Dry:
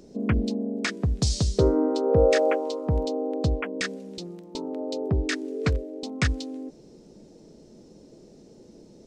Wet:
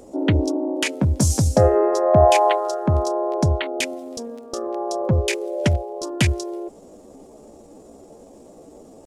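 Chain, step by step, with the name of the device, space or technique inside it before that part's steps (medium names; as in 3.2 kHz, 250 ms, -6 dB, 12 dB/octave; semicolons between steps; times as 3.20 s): chipmunk voice (pitch shift +5 st); trim +5.5 dB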